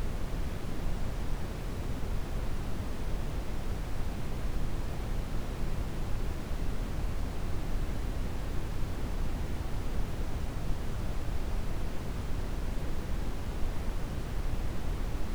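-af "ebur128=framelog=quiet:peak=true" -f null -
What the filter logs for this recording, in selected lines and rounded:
Integrated loudness:
  I:         -37.9 LUFS
  Threshold: -47.8 LUFS
Loudness range:
  LRA:         0.6 LU
  Threshold: -57.8 LUFS
  LRA low:   -38.1 LUFS
  LRA high:  -37.6 LUFS
True peak:
  Peak:      -17.2 dBFS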